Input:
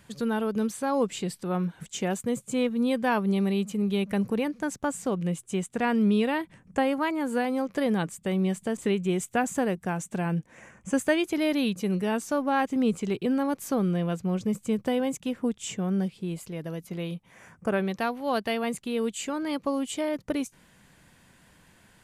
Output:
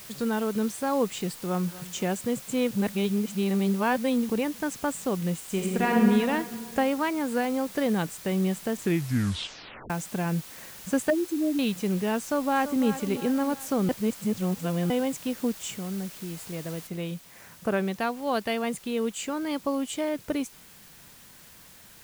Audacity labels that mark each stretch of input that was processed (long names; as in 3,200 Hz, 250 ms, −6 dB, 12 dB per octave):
1.470000	1.890000	delay throw 240 ms, feedback 40%, level −17 dB
2.710000	4.290000	reverse
5.360000	6.010000	thrown reverb, RT60 2 s, DRR −1.5 dB
8.770000	8.770000	tape stop 1.13 s
11.100000	11.590000	expanding power law on the bin magnitudes exponent 3.8
12.210000	12.860000	delay throw 340 ms, feedback 50%, level −11.5 dB
13.890000	14.900000	reverse
15.700000	16.370000	downward compressor 1.5 to 1, threshold −40 dBFS
16.870000	16.870000	noise floor change −45 dB −52 dB